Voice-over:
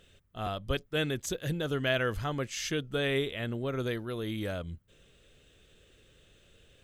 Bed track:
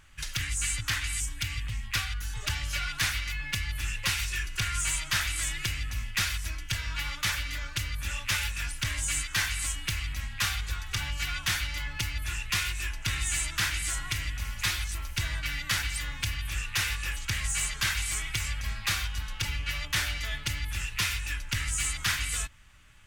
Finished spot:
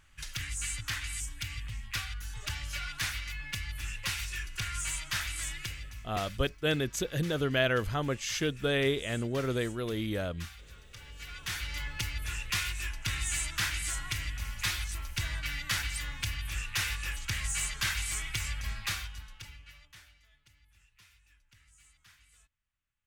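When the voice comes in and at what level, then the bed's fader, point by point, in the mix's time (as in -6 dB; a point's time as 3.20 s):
5.70 s, +1.5 dB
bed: 5.53 s -5.5 dB
6.46 s -18.5 dB
10.98 s -18.5 dB
11.75 s -3 dB
18.79 s -3 dB
20.28 s -32 dB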